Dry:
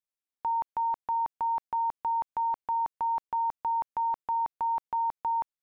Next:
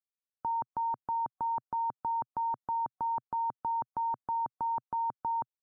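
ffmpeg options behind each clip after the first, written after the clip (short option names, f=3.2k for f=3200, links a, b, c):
-af "afftdn=nr=17:nf=-49,equalizer=f=125:t=o:w=1:g=9,equalizer=f=250:t=o:w=1:g=7,equalizer=f=1k:t=o:w=1:g=-4"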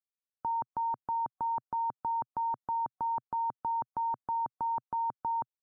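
-af anull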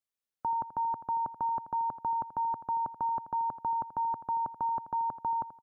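-af "aecho=1:1:83|166|249:0.211|0.0655|0.0203,volume=1.5dB"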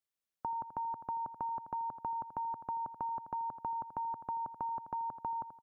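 -af "acompressor=threshold=-34dB:ratio=6,volume=-1.5dB"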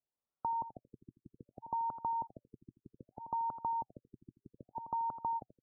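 -filter_complex "[0:a]asplit=2[a][b];[b]aeval=exprs='(mod(26.6*val(0)+1,2)-1)/26.6':c=same,volume=-10.5dB[c];[a][c]amix=inputs=2:normalize=0,afftfilt=real='re*lt(b*sr/1024,360*pow(1500/360,0.5+0.5*sin(2*PI*0.64*pts/sr)))':imag='im*lt(b*sr/1024,360*pow(1500/360,0.5+0.5*sin(2*PI*0.64*pts/sr)))':win_size=1024:overlap=0.75"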